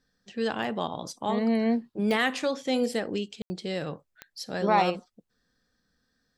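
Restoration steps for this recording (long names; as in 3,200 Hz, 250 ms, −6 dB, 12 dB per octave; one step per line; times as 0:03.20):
click removal
ambience match 0:03.42–0:03.50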